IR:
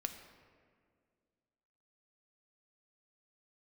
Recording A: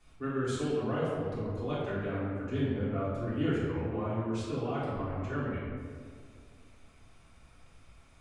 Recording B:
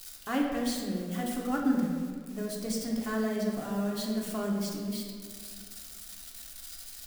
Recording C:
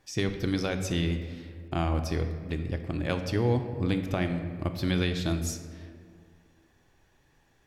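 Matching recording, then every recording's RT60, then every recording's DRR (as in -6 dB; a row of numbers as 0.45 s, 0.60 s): C; 2.0 s, 2.0 s, 2.0 s; -11.5 dB, -1.5 dB, 6.0 dB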